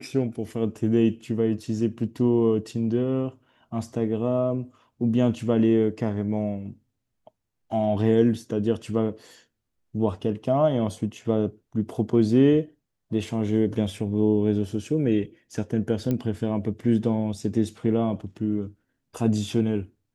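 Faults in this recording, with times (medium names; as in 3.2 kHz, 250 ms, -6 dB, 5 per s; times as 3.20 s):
16.11 s: pop -15 dBFS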